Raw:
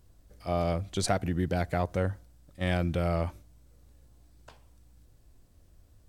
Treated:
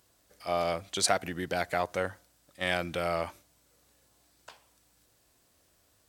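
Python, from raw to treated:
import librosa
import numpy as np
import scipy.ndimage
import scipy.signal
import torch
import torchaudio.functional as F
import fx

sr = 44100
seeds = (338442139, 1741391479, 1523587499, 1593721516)

y = fx.highpass(x, sr, hz=990.0, slope=6)
y = F.gain(torch.from_numpy(y), 6.0).numpy()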